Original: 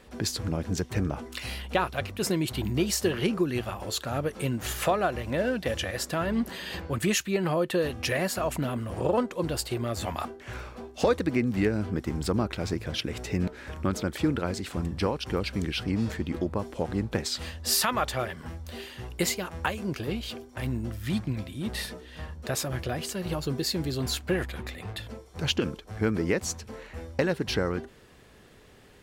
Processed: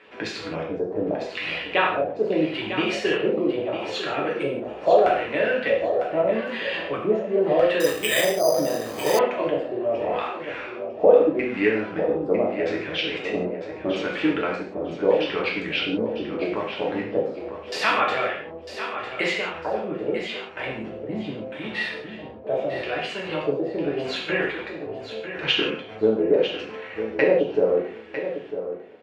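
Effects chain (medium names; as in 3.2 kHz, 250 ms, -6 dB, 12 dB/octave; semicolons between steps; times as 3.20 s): high-pass 320 Hz 12 dB/octave; LFO low-pass square 0.79 Hz 600–2500 Hz; feedback delay 951 ms, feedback 19%, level -10 dB; gated-style reverb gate 200 ms falling, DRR -3 dB; 7.80–9.19 s: careless resampling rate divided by 8×, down filtered, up hold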